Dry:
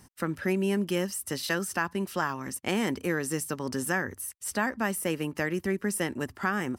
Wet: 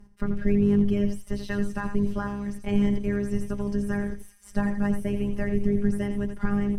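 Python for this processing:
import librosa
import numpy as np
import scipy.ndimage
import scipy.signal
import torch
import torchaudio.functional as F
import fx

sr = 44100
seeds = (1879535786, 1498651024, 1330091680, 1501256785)

p1 = fx.octave_divider(x, sr, octaves=2, level_db=4.0)
p2 = fx.quant_dither(p1, sr, seeds[0], bits=6, dither='none')
p3 = p1 + (p2 * librosa.db_to_amplitude(-10.0))
p4 = fx.robotise(p3, sr, hz=203.0)
p5 = p4 + 10.0 ** (-9.5 / 20.0) * np.pad(p4, (int(84 * sr / 1000.0), 0))[:len(p4)]
p6 = fx.cheby_harmonics(p5, sr, harmonics=(5,), levels_db=(-27,), full_scale_db=-9.5)
p7 = fx.riaa(p6, sr, side='playback')
p8 = p7 + fx.echo_wet_highpass(p7, sr, ms=196, feedback_pct=77, hz=4700.0, wet_db=-12, dry=0)
y = p8 * librosa.db_to_amplitude(-5.5)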